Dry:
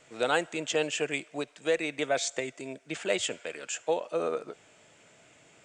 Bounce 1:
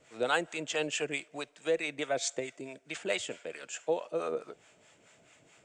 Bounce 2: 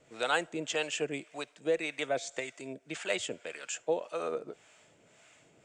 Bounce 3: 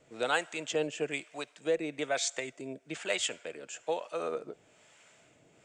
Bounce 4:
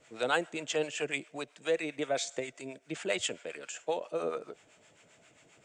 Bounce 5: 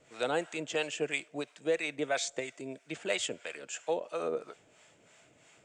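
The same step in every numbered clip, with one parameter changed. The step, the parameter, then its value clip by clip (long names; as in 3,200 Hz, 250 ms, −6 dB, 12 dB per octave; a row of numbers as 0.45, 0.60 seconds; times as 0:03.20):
two-band tremolo in antiphase, speed: 4.6, 1.8, 1.1, 7.5, 3 Hertz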